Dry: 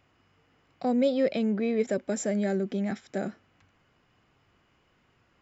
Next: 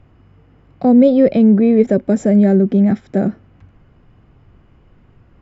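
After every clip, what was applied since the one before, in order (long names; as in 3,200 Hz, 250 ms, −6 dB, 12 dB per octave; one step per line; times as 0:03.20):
spectral tilt −4 dB per octave
level +8.5 dB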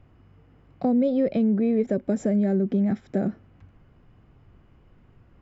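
downward compressor 2.5 to 1, threshold −15 dBFS, peak gain reduction 6.5 dB
level −6 dB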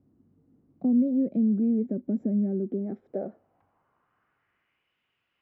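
band-pass filter sweep 250 Hz → 2,900 Hz, 0:02.43–0:04.96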